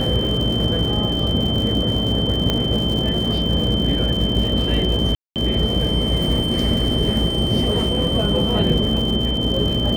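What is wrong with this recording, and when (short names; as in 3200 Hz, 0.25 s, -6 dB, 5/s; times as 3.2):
buzz 60 Hz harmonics 11 -25 dBFS
crackle 190/s -26 dBFS
tone 3100 Hz -23 dBFS
2.5 pop -6 dBFS
5.15–5.36 gap 0.208 s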